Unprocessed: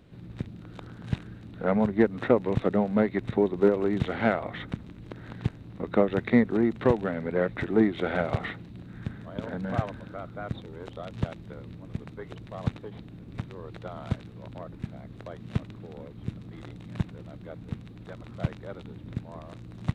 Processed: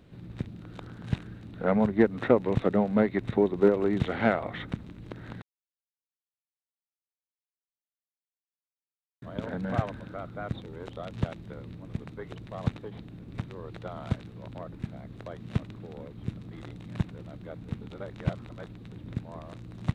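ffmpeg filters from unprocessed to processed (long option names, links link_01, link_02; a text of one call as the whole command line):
ffmpeg -i in.wav -filter_complex "[0:a]asplit=5[link_01][link_02][link_03][link_04][link_05];[link_01]atrim=end=5.42,asetpts=PTS-STARTPTS,afade=type=out:start_time=5.416:duration=0.004:curve=hsin[link_06];[link_02]atrim=start=5.42:end=9.22,asetpts=PTS-STARTPTS,volume=0[link_07];[link_03]atrim=start=9.22:end=17.812,asetpts=PTS-STARTPTS,afade=type=in:duration=0.004:curve=hsin[link_08];[link_04]atrim=start=17.808:end=18.922,asetpts=PTS-STARTPTS,areverse[link_09];[link_05]atrim=start=18.918[link_10];[link_06][link_07][link_08]concat=n=3:v=0:a=1[link_11];[link_11][link_09]acrossfade=duration=0.004:curve1=hsin:curve2=hsin[link_12];[link_12][link_10]acrossfade=duration=0.004:curve1=hsin:curve2=hsin" out.wav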